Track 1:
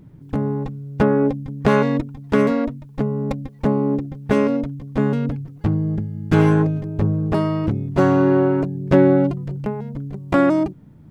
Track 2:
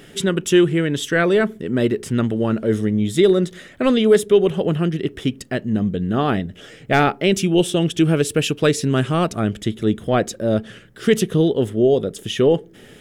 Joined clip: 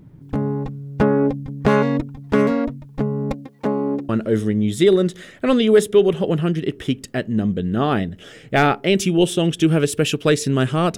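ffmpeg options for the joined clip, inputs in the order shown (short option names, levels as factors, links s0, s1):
-filter_complex "[0:a]asettb=1/sr,asplit=3[s0][s1][s2];[s0]atrim=end=3.334[s3];[s1]atrim=start=3.33:end=4.09,asetpts=PTS-STARTPTS,afade=t=in:d=0.004:c=qsin,afade=t=out:st=0.756:d=0.004:c=qsin,highpass=240[s4];[s2]atrim=start=4.086[s5];[s3][s4]acrossfade=d=0.004:c1=hsin:c2=qsin[s6];[s6][s5]acrossfade=d=0.004:c1=qsin:c2=hsin,apad=whole_dur=10.97,atrim=end=10.97,atrim=end=4.092[s7];[1:a]atrim=start=2.458:end=9.34[s8];[s7][s8]acrossfade=d=0.004:c1=hsin:c2=hsin"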